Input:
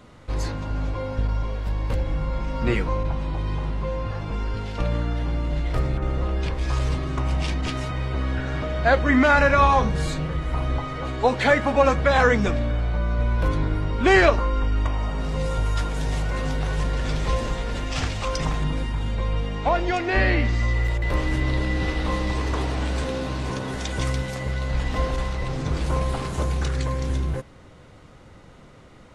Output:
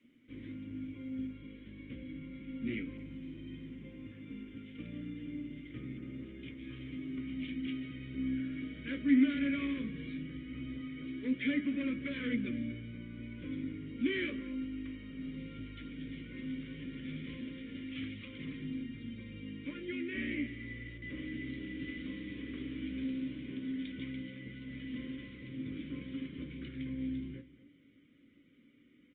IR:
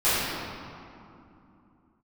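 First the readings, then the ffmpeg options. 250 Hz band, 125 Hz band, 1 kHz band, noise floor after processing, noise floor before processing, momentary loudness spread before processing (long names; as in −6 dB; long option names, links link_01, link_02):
−6.5 dB, −22.5 dB, −36.0 dB, −62 dBFS, −47 dBFS, 10 LU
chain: -filter_complex "[0:a]adynamicequalizer=threshold=0.0141:dfrequency=120:dqfactor=0.77:tfrequency=120:tqfactor=0.77:attack=5:release=100:ratio=0.375:range=3:mode=boostabove:tftype=bell,asoftclip=type=hard:threshold=-13dB,flanger=delay=8.4:depth=9.6:regen=58:speed=0.16:shape=sinusoidal,asplit=3[link_01][link_02][link_03];[link_01]bandpass=frequency=270:width_type=q:width=8,volume=0dB[link_04];[link_02]bandpass=frequency=2290:width_type=q:width=8,volume=-6dB[link_05];[link_03]bandpass=frequency=3010:width_type=q:width=8,volume=-9dB[link_06];[link_04][link_05][link_06]amix=inputs=3:normalize=0,asplit=2[link_07][link_08];[link_08]adelay=233.2,volume=-17dB,highshelf=frequency=4000:gain=-5.25[link_09];[link_07][link_09]amix=inputs=2:normalize=0,asplit=2[link_10][link_11];[1:a]atrim=start_sample=2205,atrim=end_sample=3528[link_12];[link_11][link_12]afir=irnorm=-1:irlink=0,volume=-40.5dB[link_13];[link_10][link_13]amix=inputs=2:normalize=0,aresample=8000,aresample=44100,asuperstop=centerf=720:order=20:qfactor=3.3,volume=1dB" -ar 48000 -c:a libopus -b:a 24k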